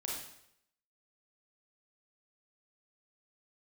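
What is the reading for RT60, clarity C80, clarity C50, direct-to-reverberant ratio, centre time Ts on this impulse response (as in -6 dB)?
0.75 s, 5.0 dB, 0.5 dB, -3.5 dB, 56 ms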